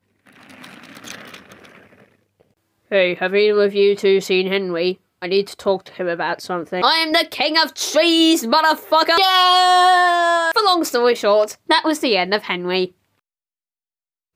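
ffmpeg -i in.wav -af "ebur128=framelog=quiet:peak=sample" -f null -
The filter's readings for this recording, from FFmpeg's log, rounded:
Integrated loudness:
  I:         -16.3 LUFS
  Threshold: -27.4 LUFS
Loudness range:
  LRA:         6.5 LU
  Threshold: -36.9 LUFS
  LRA low:   -20.5 LUFS
  LRA high:  -14.0 LUFS
Sample peak:
  Peak:       -4.2 dBFS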